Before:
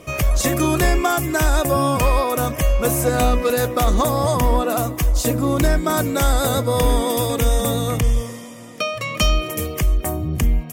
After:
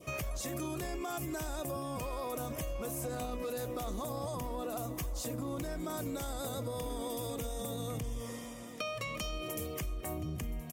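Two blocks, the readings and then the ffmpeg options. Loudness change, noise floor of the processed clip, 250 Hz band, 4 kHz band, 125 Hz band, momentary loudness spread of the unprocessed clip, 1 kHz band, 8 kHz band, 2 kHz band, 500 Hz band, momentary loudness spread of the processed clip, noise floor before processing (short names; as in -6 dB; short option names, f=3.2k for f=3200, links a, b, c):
-19.0 dB, -44 dBFS, -17.5 dB, -18.0 dB, -19.5 dB, 5 LU, -19.5 dB, -17.5 dB, -19.5 dB, -18.0 dB, 2 LU, -34 dBFS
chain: -filter_complex "[0:a]highpass=f=85:p=1,adynamicequalizer=threshold=0.0141:dfrequency=1700:dqfactor=1.1:tfrequency=1700:tqfactor=1.1:attack=5:release=100:ratio=0.375:range=3:mode=cutabove:tftype=bell,alimiter=limit=-16.5dB:level=0:latency=1,acompressor=threshold=-26dB:ratio=6,asplit=2[a][b];[b]aecho=0:1:1023|2046|3069|4092:0.126|0.0567|0.0255|0.0115[c];[a][c]amix=inputs=2:normalize=0,volume=-8.5dB"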